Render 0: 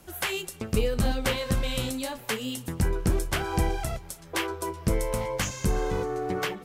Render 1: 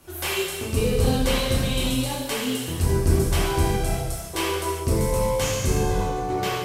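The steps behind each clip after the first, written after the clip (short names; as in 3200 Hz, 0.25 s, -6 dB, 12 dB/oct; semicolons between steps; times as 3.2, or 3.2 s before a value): dynamic EQ 1600 Hz, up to -5 dB, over -45 dBFS, Q 1.1; non-linear reverb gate 0.44 s falling, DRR -7.5 dB; gain -2 dB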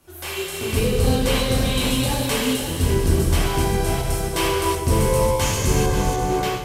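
regenerating reverse delay 0.268 s, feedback 60%, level -7 dB; AGC; gain -5 dB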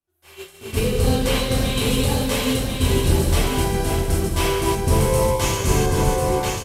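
expander -18 dBFS; echo 1.043 s -4 dB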